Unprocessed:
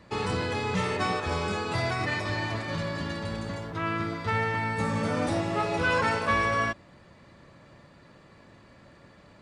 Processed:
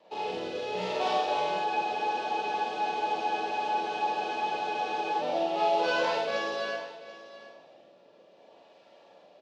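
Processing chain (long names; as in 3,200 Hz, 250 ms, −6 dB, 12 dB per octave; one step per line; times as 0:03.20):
running median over 15 samples
Chebyshev band-pass filter 660–3,600 Hz, order 2
flat-topped bell 1,500 Hz −13.5 dB 1.3 octaves
in parallel at −2 dB: speech leveller
on the sum: rotating-speaker cabinet horn 0.65 Hz
on a send: single-tap delay 735 ms −16 dB
on the sum: four-comb reverb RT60 0.72 s, combs from 33 ms, DRR −4 dB
frozen spectrum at 0:01.68, 3.53 s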